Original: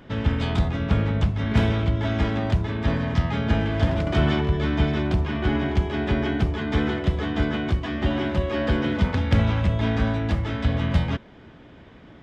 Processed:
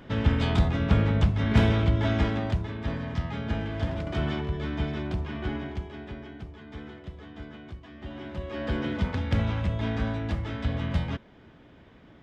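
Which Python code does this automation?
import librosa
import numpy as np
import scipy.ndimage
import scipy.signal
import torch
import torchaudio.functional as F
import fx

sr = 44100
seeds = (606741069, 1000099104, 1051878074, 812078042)

y = fx.gain(x, sr, db=fx.line((2.1, -0.5), (2.77, -8.0), (5.44, -8.0), (6.28, -18.5), (7.94, -18.5), (8.77, -6.0)))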